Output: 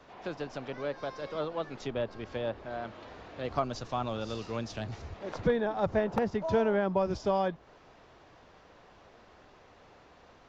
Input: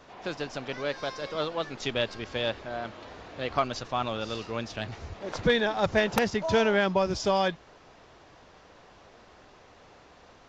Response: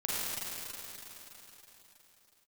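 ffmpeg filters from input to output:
-filter_complex "[0:a]highshelf=f=5.3k:g=-7.5,acrossover=split=120|1300[a][b][c];[c]acompressor=threshold=-44dB:ratio=6[d];[a][b][d]amix=inputs=3:normalize=0,asettb=1/sr,asplit=3[e][f][g];[e]atrim=end=3.444[h];[f]atrim=start=3.44:end=5.02,asetpts=PTS-STARTPTS,afade=t=in:d=0.004:c=qsin,afade=t=out:st=1.576:d=0.004:c=qsin,bass=f=250:g=3,treble=f=4k:g=10[i];[g]atrim=start=5.016[j];[h][i]acrossfade=d=0.004:c1=hsin:c2=qsin[k];[k][j]acrossfade=d=0.004:c1=qsin:c2=hsin,volume=-2.5dB"

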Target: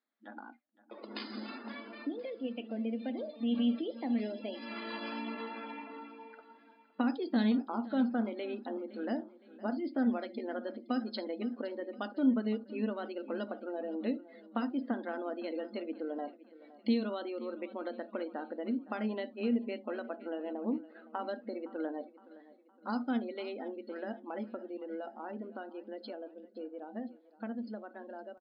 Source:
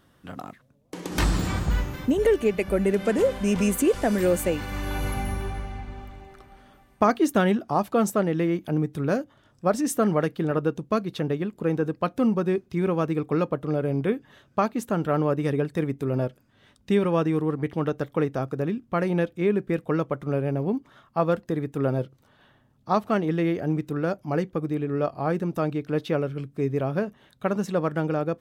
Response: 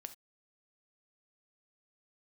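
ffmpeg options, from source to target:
-filter_complex "[0:a]asetrate=50951,aresample=44100,atempo=0.865537,acrossover=split=270|4000[a][b][c];[b]acompressor=threshold=-37dB:ratio=12[d];[a][d][c]amix=inputs=3:normalize=0[e];[1:a]atrim=start_sample=2205,afade=t=out:st=0.37:d=0.01,atrim=end_sample=16758[f];[e][f]afir=irnorm=-1:irlink=0,dynaudnorm=f=270:g=31:m=6dB,equalizer=f=370:t=o:w=0.41:g=-9.5,afftfilt=real='re*between(b*sr/4096,210,5100)':imag='im*between(b*sr/4096,210,5100)':win_size=4096:overlap=0.75,afftdn=nr=22:nf=-48,asplit=2[g][h];[h]aecho=0:1:514|1028|1542|2056:0.119|0.0535|0.0241|0.0108[i];[g][i]amix=inputs=2:normalize=0"

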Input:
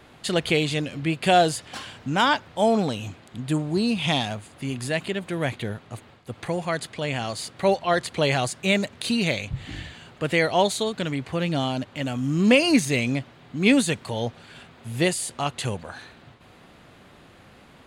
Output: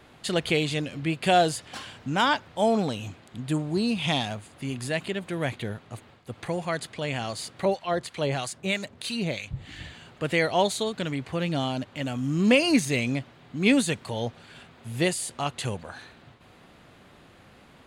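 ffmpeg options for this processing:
-filter_complex "[0:a]asettb=1/sr,asplit=3[a][b][c];[a]atrim=end=7.654[d];[b]atrim=start=7.65:end=9.8,asetpts=PTS-STARTPTS,afade=t=in:d=0.004:c=qsin,afade=t=out:st=2.146:d=0.004:c=qsin,acrossover=split=970[e][f];[e]aeval=exprs='val(0)*(1-0.7/2+0.7/2*cos(2*PI*3.1*n/s))':c=same[g];[f]aeval=exprs='val(0)*(1-0.7/2-0.7/2*cos(2*PI*3.1*n/s))':c=same[h];[g][h]amix=inputs=2:normalize=0[i];[c]atrim=start=9.796[j];[d][i]acrossfade=d=0.004:c1=hsin:c2=qsin[k];[k][j]acrossfade=d=0.004:c1=qsin:c2=hsin,volume=-2.5dB"

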